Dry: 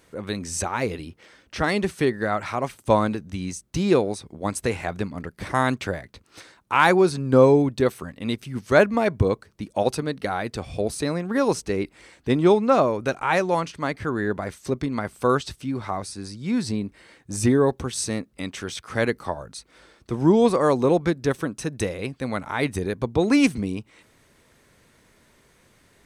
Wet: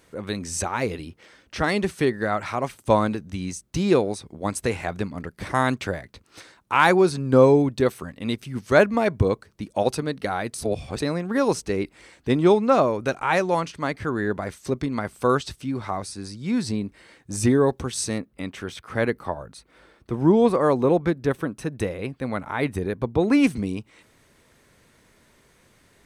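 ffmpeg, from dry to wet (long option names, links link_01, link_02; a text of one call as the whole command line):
ffmpeg -i in.wav -filter_complex "[0:a]asettb=1/sr,asplit=3[link_01][link_02][link_03];[link_01]atrim=end=18.184[link_04];[link_02]atrim=start=18.18:end=23.47,asetpts=PTS-STARTPTS,afade=type=in:duration=0.004:curve=qsin,afade=type=out:start_time=5.286:duration=0.004:curve=qsin,equalizer=frequency=6400:width_type=o:width=1.7:gain=-9[link_05];[link_03]atrim=start=23.466[link_06];[link_04][link_05]acrossfade=duration=0.004:curve1=hsin:curve2=qsin[link_07];[link_07][link_06]acrossfade=duration=0.004:curve1=qsin:curve2=hsin,asplit=3[link_08][link_09][link_10];[link_08]atrim=end=10.542[link_11];[link_09]atrim=start=10.538:end=10.992,asetpts=PTS-STARTPTS,areverse[link_12];[link_10]atrim=start=10.988[link_13];[link_11][link_12]acrossfade=duration=0.004:curve1=hsin:curve2=hsin[link_14];[link_14][link_13]acrossfade=duration=0.004:curve1=hsin:curve2=hsin" out.wav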